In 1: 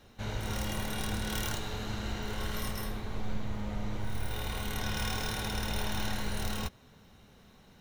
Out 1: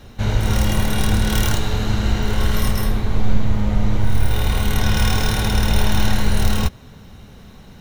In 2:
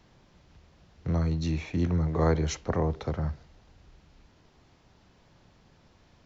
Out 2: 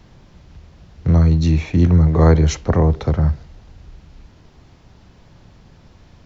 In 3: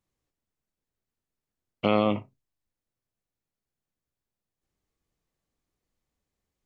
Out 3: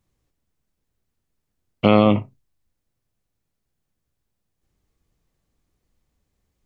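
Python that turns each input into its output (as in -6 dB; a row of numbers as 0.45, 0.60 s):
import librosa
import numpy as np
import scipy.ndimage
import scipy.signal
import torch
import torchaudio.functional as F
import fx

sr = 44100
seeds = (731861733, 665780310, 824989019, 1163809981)

y = fx.low_shelf(x, sr, hz=190.0, db=8.0)
y = y * 10.0 ** (-2 / 20.0) / np.max(np.abs(y))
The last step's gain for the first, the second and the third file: +11.5, +8.5, +6.5 dB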